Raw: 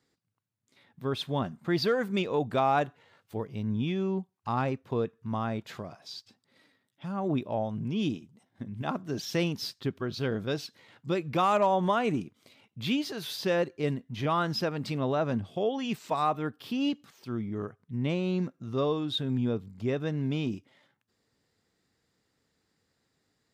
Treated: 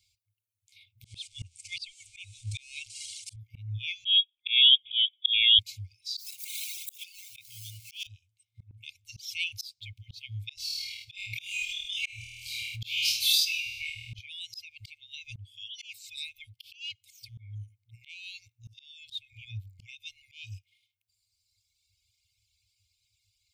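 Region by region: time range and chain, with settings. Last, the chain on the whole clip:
0:01.05–0:03.36: spike at every zero crossing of −31.5 dBFS + elliptic low-pass filter 8,800 Hz, stop band 60 dB + low-shelf EQ 180 Hz +11 dB
0:04.05–0:05.59: parametric band 150 Hz +10.5 dB 2.6 octaves + leveller curve on the samples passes 1 + voice inversion scrambler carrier 3,500 Hz
0:06.17–0:08.07: converter with a step at zero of −43.5 dBFS + spectral tilt +4 dB per octave
0:10.55–0:14.19: flutter between parallel walls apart 4.4 metres, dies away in 1.1 s + level that may fall only so fast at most 21 dB per second
whole clip: brick-wall band-stop 110–2,100 Hz; reverb reduction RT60 1.7 s; volume swells 312 ms; level +8.5 dB

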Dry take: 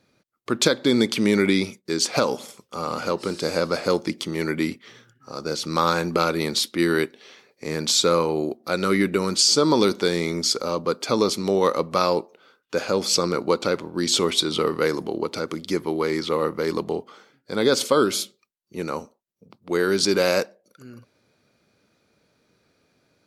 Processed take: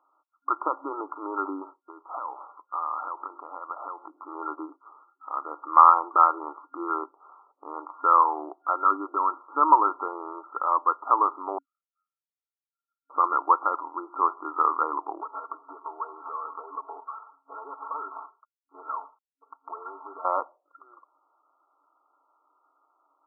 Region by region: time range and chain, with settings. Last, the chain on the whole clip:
0:01.80–0:04.23: low-pass filter 7,700 Hz + downward compressor 16 to 1, threshold −29 dBFS
0:11.58–0:13.10: variable-slope delta modulation 16 kbit/s + Butterworth high-pass 2,400 Hz 72 dB per octave + comb filter 1.4 ms, depth 84%
0:15.21–0:20.25: variable-slope delta modulation 16 kbit/s + downward compressor 5 to 1, threshold −33 dBFS + comb filter 4.5 ms, depth 92%
whole clip: brick-wall band-pass 270–1,400 Hz; low shelf with overshoot 680 Hz −12 dB, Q 3; level +3 dB

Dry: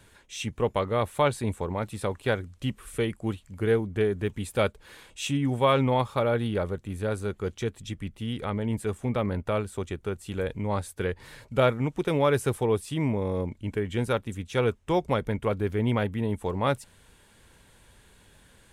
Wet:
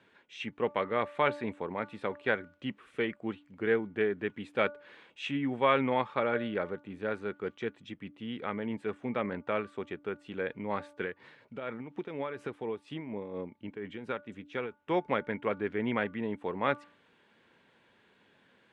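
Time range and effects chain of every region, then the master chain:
0:11.02–0:14.83: downward compressor 12 to 1, threshold −24 dBFS + amplitude tremolo 4.2 Hz, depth 52%
whole clip: Chebyshev band-pass filter 230–2,700 Hz, order 2; hum removal 292.2 Hz, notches 5; dynamic equaliser 1,800 Hz, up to +7 dB, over −46 dBFS, Q 1.4; level −4 dB

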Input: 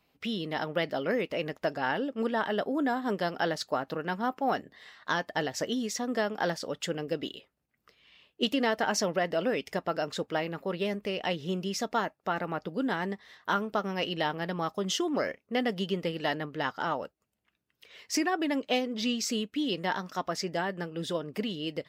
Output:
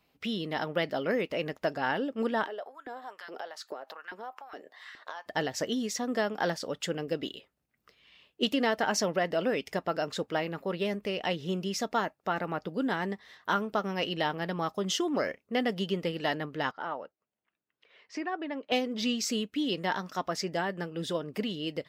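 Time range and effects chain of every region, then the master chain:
0:02.45–0:05.26: downward compressor 8 to 1, threshold −39 dBFS + auto-filter high-pass saw up 2.4 Hz 330–1,700 Hz
0:16.71–0:18.72: high-pass filter 560 Hz 6 dB per octave + head-to-tape spacing loss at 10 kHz 31 dB
whole clip: no processing

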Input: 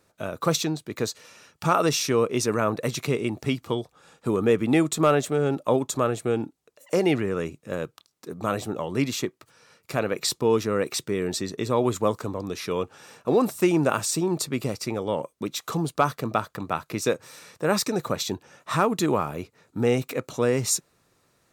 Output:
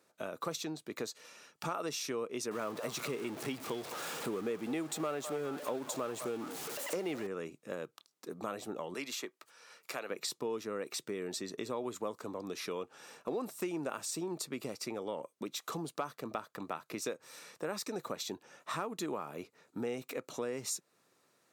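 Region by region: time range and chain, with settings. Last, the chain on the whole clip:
0:02.51–0:07.27: converter with a step at zero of −29.5 dBFS + echo through a band-pass that steps 206 ms, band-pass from 830 Hz, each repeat 0.7 octaves, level −8.5 dB
0:08.94–0:10.10: high-pass filter 760 Hz 6 dB per octave + multiband upward and downward compressor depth 40%
whole clip: high-pass filter 220 Hz 12 dB per octave; downward compressor 3 to 1, threshold −32 dBFS; level −5 dB

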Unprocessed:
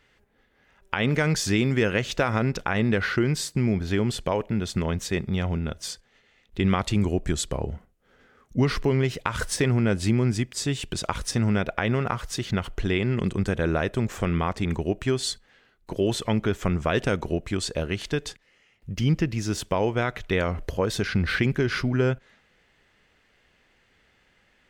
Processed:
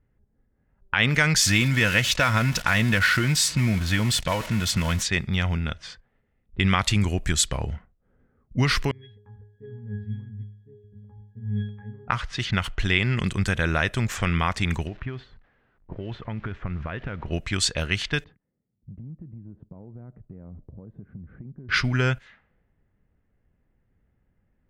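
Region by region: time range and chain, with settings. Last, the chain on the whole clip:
0:01.41–0:05.03: converter with a step at zero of −32 dBFS + notch comb filter 400 Hz
0:08.91–0:12.08: parametric band 790 Hz −10.5 dB 0.42 octaves + resonances in every octave G#, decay 0.63 s
0:14.87–0:17.26: spike at every zero crossing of −27 dBFS + downward compressor 5 to 1, threshold −26 dBFS + head-to-tape spacing loss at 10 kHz 35 dB
0:18.24–0:21.69: resonant band-pass 200 Hz, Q 1.2 + downward compressor 5 to 1, threshold −38 dBFS + high-frequency loss of the air 300 metres
whole clip: low-pass that shuts in the quiet parts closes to 350 Hz, open at −23 dBFS; drawn EQ curve 110 Hz 0 dB, 410 Hz −9 dB, 1,800 Hz +5 dB; level +3 dB

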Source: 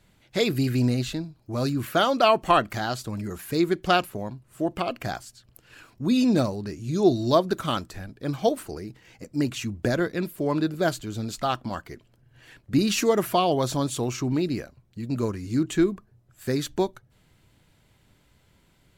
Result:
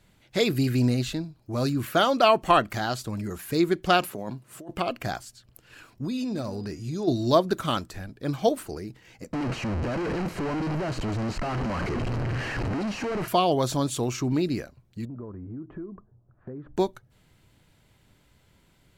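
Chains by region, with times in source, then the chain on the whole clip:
0:04.02–0:04.71: high-pass filter 150 Hz + compressor whose output falls as the input rises −36 dBFS + one half of a high-frequency compander encoder only
0:06.04–0:07.07: hum removal 240.5 Hz, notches 15 + downward compressor 4 to 1, threshold −28 dBFS + steady tone 4,900 Hz −56 dBFS
0:09.33–0:13.28: sign of each sample alone + head-to-tape spacing loss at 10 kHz 24 dB + notch filter 3,500 Hz, Q 5.9
0:15.05–0:16.77: low-pass filter 1,200 Hz 24 dB per octave + downward compressor 5 to 1, threshold −36 dBFS
whole clip: no processing

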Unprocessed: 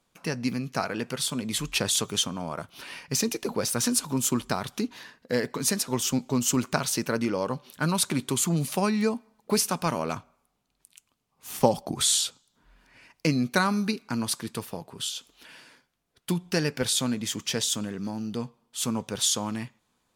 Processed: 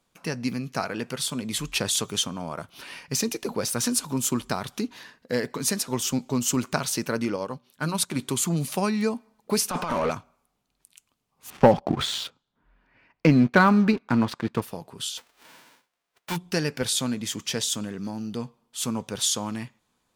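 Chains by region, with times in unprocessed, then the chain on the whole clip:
0:07.36–0:08.16: mains-hum notches 60/120/180/240/300 Hz + expander for the loud parts, over −46 dBFS
0:09.70–0:10.11: compressor whose output falls as the input rises −31 dBFS, ratio −0.5 + mid-hump overdrive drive 25 dB, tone 1,400 Hz, clips at −15.5 dBFS
0:11.50–0:14.62: low-pass filter 2,300 Hz + leveller curve on the samples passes 2
0:15.17–0:16.35: spectral envelope flattened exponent 0.1 + mid-hump overdrive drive 13 dB, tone 1,300 Hz, clips at −12 dBFS
whole clip: no processing

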